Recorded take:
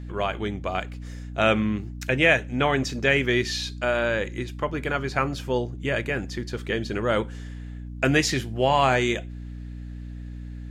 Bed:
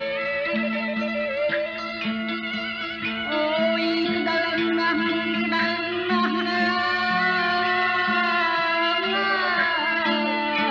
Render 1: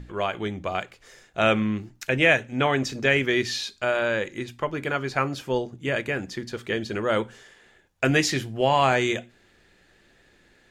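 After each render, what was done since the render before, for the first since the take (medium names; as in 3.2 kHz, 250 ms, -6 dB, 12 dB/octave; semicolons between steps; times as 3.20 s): hum notches 60/120/180/240/300 Hz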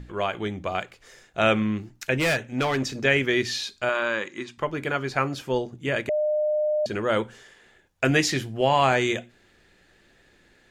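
2.19–2.96 s: hard clipper -19.5 dBFS; 3.89–4.58 s: cabinet simulation 230–8500 Hz, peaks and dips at 480 Hz -7 dB, 710 Hz -5 dB, 1.1 kHz +8 dB; 6.09–6.86 s: bleep 606 Hz -20.5 dBFS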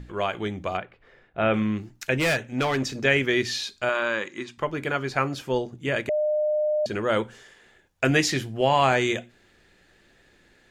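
0.77–1.54 s: distance through air 460 m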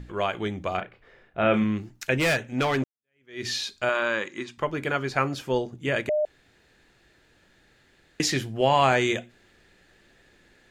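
0.74–1.64 s: doubling 33 ms -8 dB; 2.84–3.46 s: fade in exponential; 6.25–8.20 s: room tone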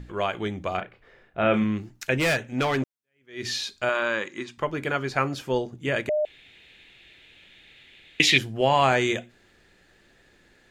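6.17–8.38 s: high-order bell 2.8 kHz +15.5 dB 1.1 oct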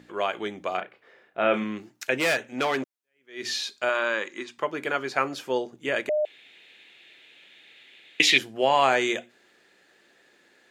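high-pass 300 Hz 12 dB/octave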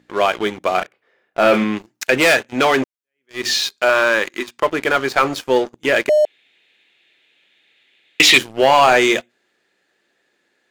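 waveshaping leveller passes 3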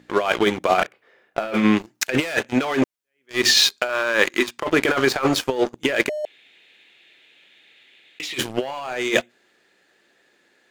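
compressor with a negative ratio -19 dBFS, ratio -0.5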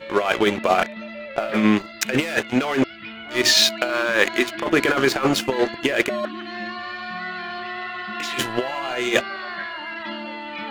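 add bed -9 dB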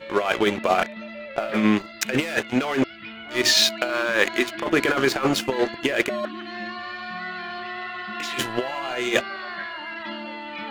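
trim -2 dB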